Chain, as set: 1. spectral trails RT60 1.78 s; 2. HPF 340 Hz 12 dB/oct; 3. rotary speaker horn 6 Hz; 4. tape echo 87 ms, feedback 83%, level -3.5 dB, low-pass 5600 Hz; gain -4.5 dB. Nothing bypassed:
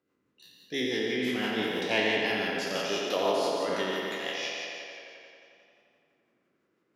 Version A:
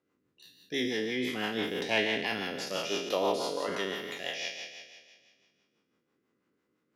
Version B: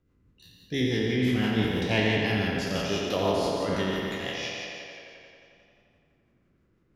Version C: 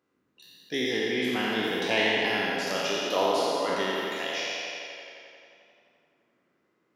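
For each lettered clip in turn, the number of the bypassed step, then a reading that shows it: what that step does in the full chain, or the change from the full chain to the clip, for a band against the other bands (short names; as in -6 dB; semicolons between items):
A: 4, momentary loudness spread change -3 LU; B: 2, 125 Hz band +16.0 dB; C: 3, 1 kHz band +1.5 dB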